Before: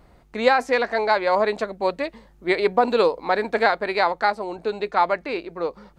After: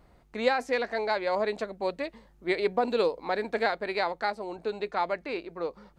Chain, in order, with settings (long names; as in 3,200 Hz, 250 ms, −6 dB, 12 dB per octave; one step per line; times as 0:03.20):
dynamic equaliser 1,100 Hz, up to −5 dB, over −30 dBFS, Q 1.2
level −6 dB